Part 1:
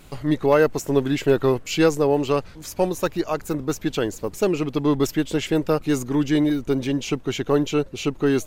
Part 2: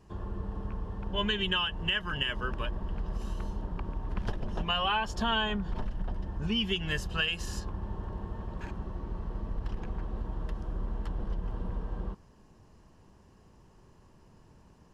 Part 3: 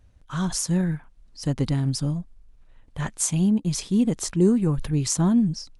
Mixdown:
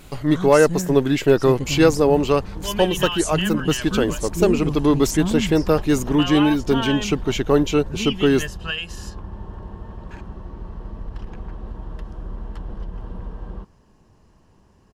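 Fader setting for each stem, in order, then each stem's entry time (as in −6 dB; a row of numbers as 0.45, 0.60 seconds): +3.0, +2.5, −4.0 decibels; 0.00, 1.50, 0.00 seconds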